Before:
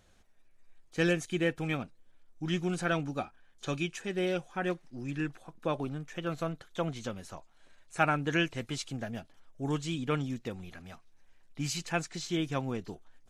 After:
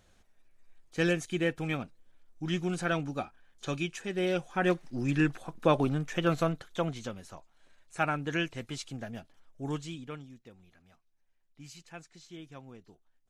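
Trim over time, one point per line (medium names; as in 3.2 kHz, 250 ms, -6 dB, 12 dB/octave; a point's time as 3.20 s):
4.14 s 0 dB
4.88 s +7.5 dB
6.28 s +7.5 dB
7.21 s -2.5 dB
9.75 s -2.5 dB
10.29 s -15 dB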